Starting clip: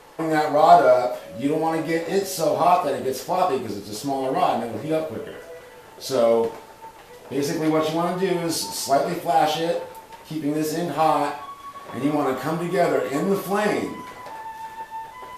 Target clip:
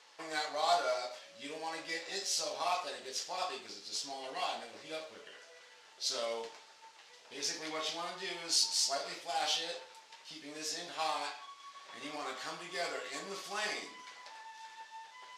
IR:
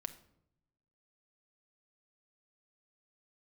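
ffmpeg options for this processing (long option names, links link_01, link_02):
-af "adynamicsmooth=sensitivity=4:basefreq=5800,bandpass=frequency=5500:width_type=q:width=1.2:csg=0,volume=1.5dB"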